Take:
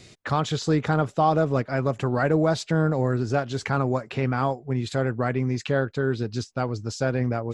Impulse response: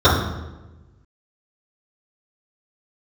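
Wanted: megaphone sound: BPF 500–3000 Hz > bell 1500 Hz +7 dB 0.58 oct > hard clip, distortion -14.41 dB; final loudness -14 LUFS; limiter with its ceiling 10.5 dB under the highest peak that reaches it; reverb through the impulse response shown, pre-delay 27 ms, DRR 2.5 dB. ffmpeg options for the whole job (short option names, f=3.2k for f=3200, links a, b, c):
-filter_complex "[0:a]alimiter=limit=-19.5dB:level=0:latency=1,asplit=2[a][b];[1:a]atrim=start_sample=2205,adelay=27[c];[b][c]afir=irnorm=-1:irlink=0,volume=-28.5dB[d];[a][d]amix=inputs=2:normalize=0,highpass=500,lowpass=3k,equalizer=f=1.5k:t=o:w=0.58:g=7,asoftclip=type=hard:threshold=-25.5dB,volume=18dB"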